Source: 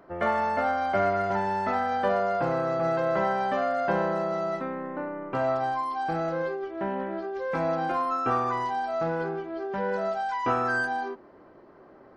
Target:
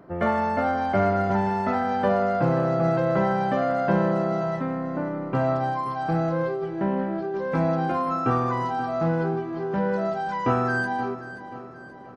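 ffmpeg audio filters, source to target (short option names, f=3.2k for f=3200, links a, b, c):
-af "equalizer=f=140:t=o:w=2.3:g=11.5,aecho=1:1:530|1060|1590|2120|2650:0.2|0.0958|0.046|0.0221|0.0106"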